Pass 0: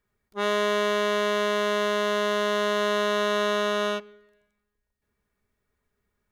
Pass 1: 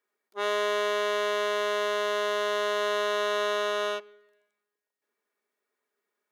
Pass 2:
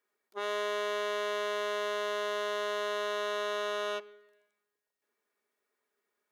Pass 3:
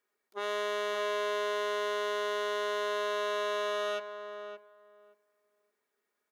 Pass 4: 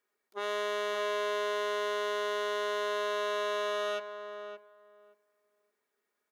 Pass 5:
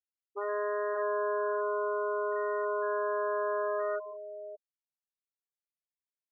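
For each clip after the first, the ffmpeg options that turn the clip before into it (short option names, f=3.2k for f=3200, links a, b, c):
-af "highpass=f=320:w=0.5412,highpass=f=320:w=1.3066,volume=-2.5dB"
-af "alimiter=level_in=1dB:limit=-24dB:level=0:latency=1:release=79,volume=-1dB"
-filter_complex "[0:a]asplit=2[a][b];[b]adelay=571,lowpass=f=1.4k:p=1,volume=-7.5dB,asplit=2[c][d];[d]adelay=571,lowpass=f=1.4k:p=1,volume=0.16,asplit=2[e][f];[f]adelay=571,lowpass=f=1.4k:p=1,volume=0.16[g];[a][c][e][g]amix=inputs=4:normalize=0"
-af anull
-af "adynamicsmooth=sensitivity=2:basefreq=3k,afftfilt=real='re*gte(hypot(re,im),0.0398)':imag='im*gte(hypot(re,im),0.0398)':win_size=1024:overlap=0.75,volume=2dB"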